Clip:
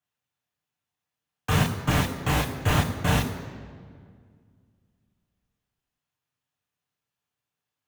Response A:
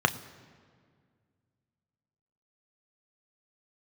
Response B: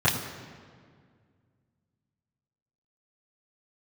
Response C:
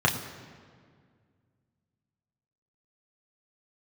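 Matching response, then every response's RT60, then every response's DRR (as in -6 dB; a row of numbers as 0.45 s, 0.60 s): C; 2.0 s, 2.0 s, 2.0 s; 8.5 dB, -11.0 dB, -1.0 dB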